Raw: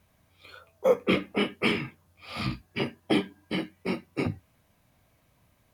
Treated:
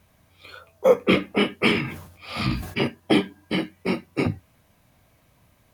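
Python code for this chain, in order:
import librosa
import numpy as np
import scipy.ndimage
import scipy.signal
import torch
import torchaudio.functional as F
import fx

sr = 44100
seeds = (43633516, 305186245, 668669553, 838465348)

y = fx.sustainer(x, sr, db_per_s=76.0, at=(1.74, 2.86), fade=0.02)
y = y * librosa.db_to_amplitude(5.5)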